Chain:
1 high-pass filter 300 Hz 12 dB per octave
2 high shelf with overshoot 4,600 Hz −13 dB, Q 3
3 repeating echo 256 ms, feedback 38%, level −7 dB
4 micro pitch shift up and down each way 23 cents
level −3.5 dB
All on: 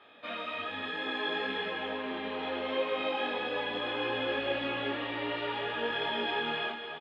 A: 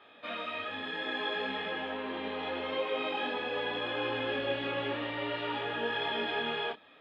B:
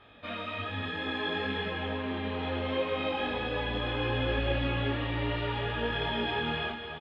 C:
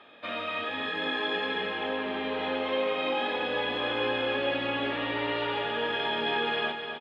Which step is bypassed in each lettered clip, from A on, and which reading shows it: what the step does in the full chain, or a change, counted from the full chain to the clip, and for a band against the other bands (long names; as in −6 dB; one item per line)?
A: 3, 125 Hz band +2.5 dB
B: 1, 125 Hz band +17.0 dB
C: 4, change in integrated loudness +3.5 LU